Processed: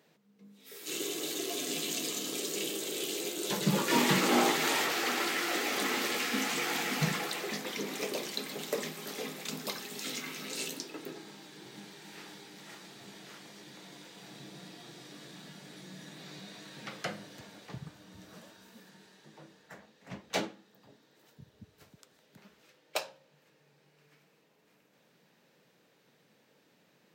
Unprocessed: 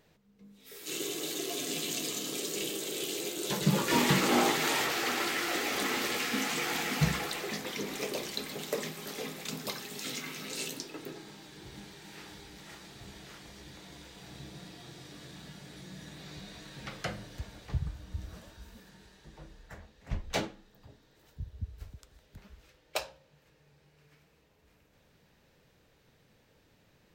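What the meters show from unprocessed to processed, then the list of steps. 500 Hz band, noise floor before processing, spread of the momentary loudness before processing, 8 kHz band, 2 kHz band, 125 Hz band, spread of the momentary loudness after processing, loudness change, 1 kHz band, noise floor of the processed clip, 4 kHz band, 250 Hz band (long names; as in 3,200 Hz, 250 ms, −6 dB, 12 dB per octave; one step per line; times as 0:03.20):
0.0 dB, −66 dBFS, 20 LU, 0.0 dB, 0.0 dB, −4.5 dB, 21 LU, 0.0 dB, 0.0 dB, −68 dBFS, 0.0 dB, −0.5 dB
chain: high-pass filter 160 Hz 24 dB per octave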